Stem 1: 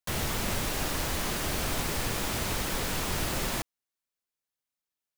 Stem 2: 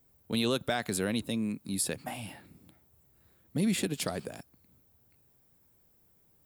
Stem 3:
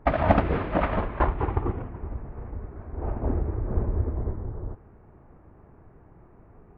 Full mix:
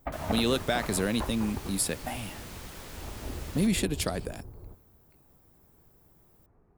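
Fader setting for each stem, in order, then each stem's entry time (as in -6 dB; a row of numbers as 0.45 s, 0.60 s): -13.5 dB, +2.5 dB, -12.5 dB; 0.05 s, 0.00 s, 0.00 s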